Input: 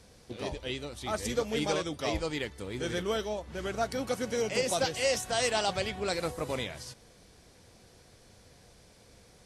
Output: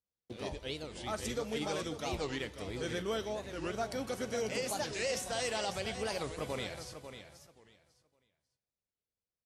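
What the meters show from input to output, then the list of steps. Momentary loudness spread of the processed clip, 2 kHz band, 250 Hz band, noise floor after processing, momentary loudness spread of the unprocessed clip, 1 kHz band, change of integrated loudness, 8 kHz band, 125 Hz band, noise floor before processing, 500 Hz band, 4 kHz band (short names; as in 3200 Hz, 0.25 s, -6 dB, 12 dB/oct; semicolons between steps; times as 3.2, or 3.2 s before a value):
9 LU, -5.0 dB, -4.5 dB, under -85 dBFS, 9 LU, -5.5 dB, -5.5 dB, -5.0 dB, -4.5 dB, -58 dBFS, -5.5 dB, -5.5 dB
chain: gate -50 dBFS, range -39 dB; limiter -21.5 dBFS, peak gain reduction 4.5 dB; feedback echo 0.545 s, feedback 20%, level -10 dB; two-slope reverb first 0.94 s, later 2.7 s, DRR 16.5 dB; record warp 45 rpm, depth 250 cents; gain -4 dB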